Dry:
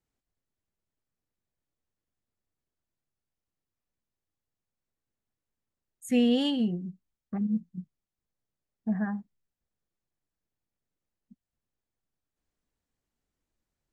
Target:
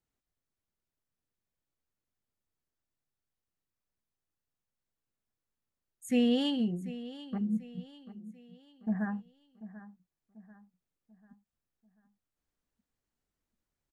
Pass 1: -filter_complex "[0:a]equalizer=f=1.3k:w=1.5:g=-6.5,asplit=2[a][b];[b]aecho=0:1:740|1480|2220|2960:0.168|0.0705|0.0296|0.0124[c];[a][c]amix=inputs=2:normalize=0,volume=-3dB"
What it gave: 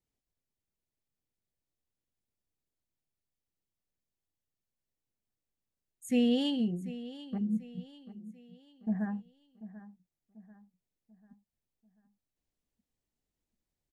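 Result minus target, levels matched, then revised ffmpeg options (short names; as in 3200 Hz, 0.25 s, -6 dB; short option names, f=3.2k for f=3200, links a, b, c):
1000 Hz band -2.5 dB
-filter_complex "[0:a]equalizer=f=1.3k:w=1.5:g=2,asplit=2[a][b];[b]aecho=0:1:740|1480|2220|2960:0.168|0.0705|0.0296|0.0124[c];[a][c]amix=inputs=2:normalize=0,volume=-3dB"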